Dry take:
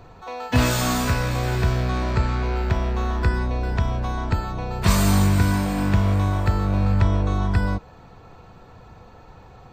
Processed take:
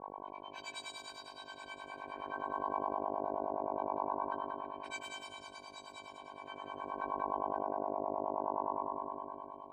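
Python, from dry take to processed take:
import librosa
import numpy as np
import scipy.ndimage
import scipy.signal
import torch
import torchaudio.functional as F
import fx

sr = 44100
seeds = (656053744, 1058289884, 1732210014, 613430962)

p1 = fx.high_shelf(x, sr, hz=11000.0, db=-5.5)
p2 = fx.comb_fb(p1, sr, f0_hz=770.0, decay_s=0.33, harmonics='all', damping=0.0, mix_pct=100)
p3 = fx.dmg_buzz(p2, sr, base_hz=50.0, harmonics=22, level_db=-38.0, tilt_db=-1, odd_only=False)
p4 = fx.echo_alternate(p3, sr, ms=432, hz=810.0, feedback_pct=51, wet_db=-6)
p5 = fx.filter_lfo_bandpass(p4, sr, shape='sine', hz=0.22, low_hz=720.0, high_hz=3700.0, q=2.0)
p6 = fx.dynamic_eq(p5, sr, hz=340.0, q=0.72, threshold_db=-55.0, ratio=4.0, max_db=5)
p7 = fx.over_compress(p6, sr, threshold_db=-42.0, ratio=-1.0)
p8 = fx.harmonic_tremolo(p7, sr, hz=9.6, depth_pct=100, crossover_hz=610.0)
p9 = p8 + fx.echo_single(p8, sr, ms=183, db=-5.0, dry=0)
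y = F.gain(torch.from_numpy(p9), 9.0).numpy()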